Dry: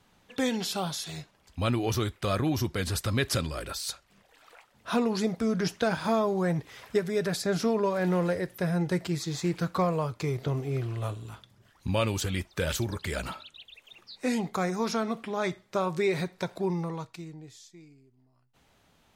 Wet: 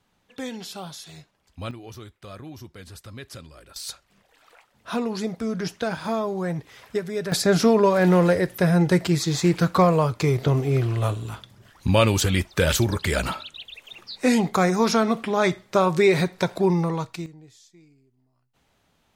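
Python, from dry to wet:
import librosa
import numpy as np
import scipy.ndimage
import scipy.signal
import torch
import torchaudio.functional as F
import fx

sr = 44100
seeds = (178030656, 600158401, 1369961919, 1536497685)

y = fx.gain(x, sr, db=fx.steps((0.0, -5.0), (1.71, -12.5), (3.76, 0.0), (7.32, 9.0), (17.26, -2.0)))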